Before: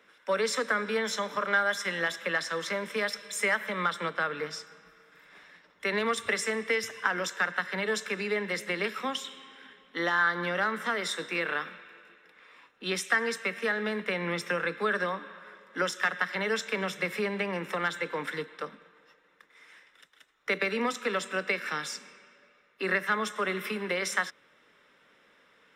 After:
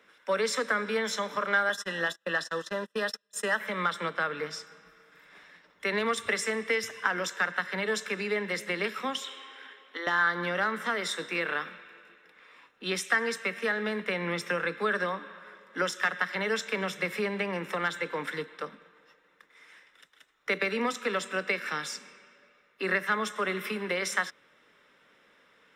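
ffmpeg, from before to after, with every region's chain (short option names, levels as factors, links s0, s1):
-filter_complex "[0:a]asettb=1/sr,asplit=3[s0][s1][s2];[s0]atrim=end=1.694[s3];[s1]atrim=start=1.69:end=3.6,asetpts=PTS-STARTPTS,afade=t=in:d=0.004:c=qsin,afade=t=out:st=1.906:d=0.004:c=qsin,asuperstop=centerf=2200:order=8:qfactor=4.9,agate=range=0.0224:threshold=0.0158:ratio=16:release=100:detection=peak[s4];[s2]atrim=start=3.596[s5];[s3][s4]acrossfade=d=0.004:c1=hsin:c2=qsin[s6];[s6][s5]acrossfade=d=0.004:c1=qsin:c2=hsin,asettb=1/sr,asplit=3[s7][s8][s9];[s7]atrim=end=9.224[s10];[s8]atrim=start=9.22:end=10.07,asetpts=PTS-STARTPTS,afade=t=in:d=0.004:c=qsin,afade=t=out:st=0.846:d=0.004:c=qsin,highpass=f=310:w=0.5412,highpass=f=310:w=1.3066,equalizer=f=1500:w=0.33:g=4,acompressor=threshold=0.0224:ratio=6:attack=3.2:release=140:knee=1:detection=peak[s11];[s9]atrim=start=10.066[s12];[s10][s11]acrossfade=d=0.004:c1=hsin:c2=qsin[s13];[s13][s12]acrossfade=d=0.004:c1=qsin:c2=hsin"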